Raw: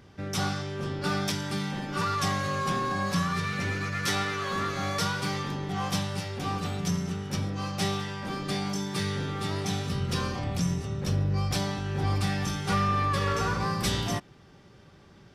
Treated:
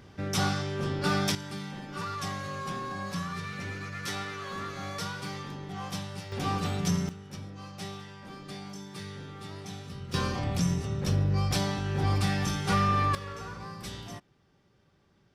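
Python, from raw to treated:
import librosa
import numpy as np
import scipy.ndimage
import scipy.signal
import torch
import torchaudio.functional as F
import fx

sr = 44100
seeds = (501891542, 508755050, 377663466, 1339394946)

y = fx.gain(x, sr, db=fx.steps((0.0, 1.5), (1.35, -7.0), (6.32, 1.0), (7.09, -11.0), (10.14, 0.5), (13.15, -12.5)))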